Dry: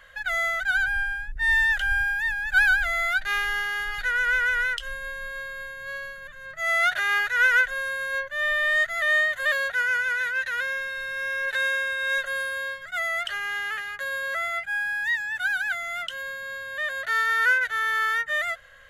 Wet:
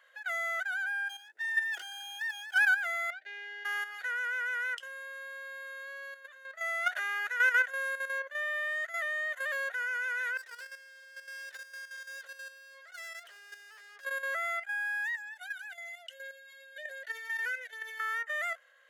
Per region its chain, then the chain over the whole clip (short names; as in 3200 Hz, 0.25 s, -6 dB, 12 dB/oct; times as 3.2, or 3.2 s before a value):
1.09–2.58 minimum comb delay 2.8 ms + Butterworth band-stop 1100 Hz, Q 5.2
3.1–3.65 Butterworth band-stop 1100 Hz, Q 1 + tape spacing loss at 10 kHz 27 dB
10.37–14.05 tube stage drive 39 dB, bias 0.5 + dark delay 0.11 s, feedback 85%, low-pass 2300 Hz, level -21 dB
15.15–18 Butterworth band-stop 1200 Hz, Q 1.6 + cascading flanger falling 1.4 Hz
whole clip: steep high-pass 400 Hz 36 dB/oct; dynamic EQ 3900 Hz, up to -8 dB, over -49 dBFS, Q 3; level quantiser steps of 10 dB; gain -3.5 dB